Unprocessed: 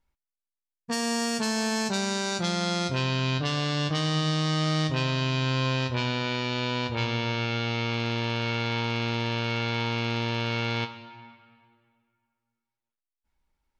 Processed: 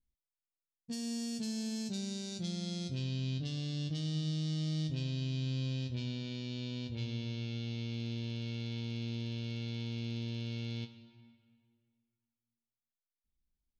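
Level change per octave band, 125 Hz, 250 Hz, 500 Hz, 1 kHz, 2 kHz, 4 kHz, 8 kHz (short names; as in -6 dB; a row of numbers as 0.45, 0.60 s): -7.5, -8.0, -17.0, -29.0, -21.0, -13.5, -12.5 dB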